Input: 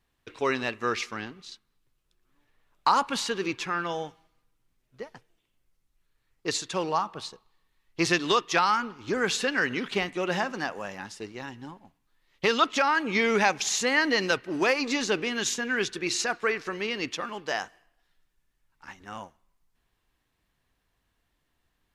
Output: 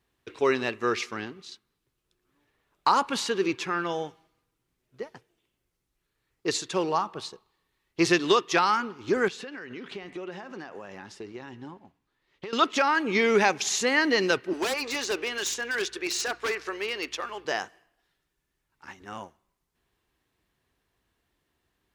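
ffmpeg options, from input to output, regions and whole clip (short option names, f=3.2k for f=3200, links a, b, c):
-filter_complex "[0:a]asettb=1/sr,asplit=3[a][b][c];[a]atrim=end=9.284[d];[b]atrim=start=9.28:end=12.53,asetpts=PTS-STARTPTS,afade=t=in:d=0.004:c=qsin,afade=t=out:st=3.246:d=0.004:c=qsin,highshelf=f=6.9k:g=-11.5,acompressor=threshold=-37dB:ratio=10:attack=3.2:release=140:knee=1:detection=peak[e];[c]atrim=start=12.526[f];[d][e]acrossfade=d=0.004:c1=hsin:c2=qsin[g];[g][f]acrossfade=d=0.004:c1=qsin:c2=hsin,asettb=1/sr,asplit=3[h][i][j];[h]atrim=end=14.534[k];[i]atrim=start=14.53:end=17.45,asetpts=PTS-STARTPTS,afade=t=in:d=0.004:c=qsin,afade=t=out:st=2.916:d=0.004:c=qsin,highpass=480,aeval=exprs='val(0)+0.000794*(sin(2*PI*60*n/s)+sin(2*PI*2*60*n/s)/2+sin(2*PI*3*60*n/s)/3+sin(2*PI*4*60*n/s)/4+sin(2*PI*5*60*n/s)/5)':c=same,aeval=exprs='0.0708*(abs(mod(val(0)/0.0708+3,4)-2)-1)':c=same[l];[j]atrim=start=17.446[m];[k][l]acrossfade=d=0.004:c1=hsin:c2=qsin[n];[n][m]acrossfade=d=0.004:c1=qsin:c2=hsin,highpass=46,equalizer=f=380:t=o:w=0.51:g=6"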